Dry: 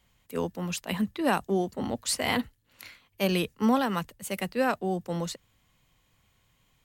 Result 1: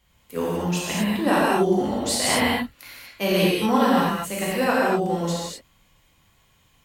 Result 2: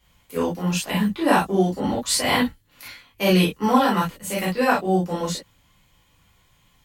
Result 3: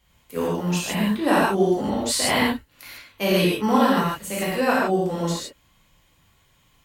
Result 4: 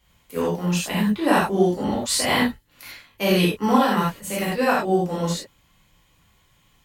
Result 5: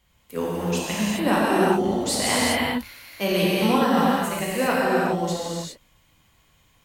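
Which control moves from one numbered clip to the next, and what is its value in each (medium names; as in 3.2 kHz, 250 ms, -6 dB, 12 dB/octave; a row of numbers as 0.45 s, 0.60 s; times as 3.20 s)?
gated-style reverb, gate: 270 ms, 80 ms, 180 ms, 120 ms, 430 ms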